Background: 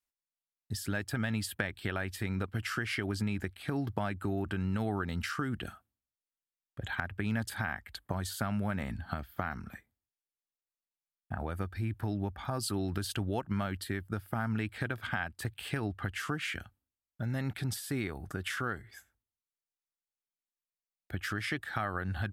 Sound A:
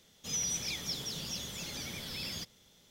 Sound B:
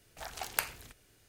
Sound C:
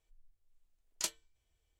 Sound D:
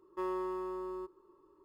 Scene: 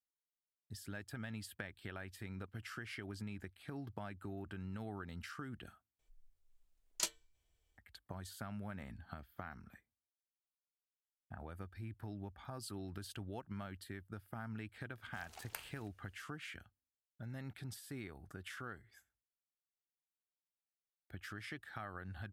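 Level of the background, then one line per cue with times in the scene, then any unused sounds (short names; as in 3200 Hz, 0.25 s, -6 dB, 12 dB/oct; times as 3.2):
background -12.5 dB
5.99 replace with C -1 dB
14.96 add B -14.5 dB
not used: A, D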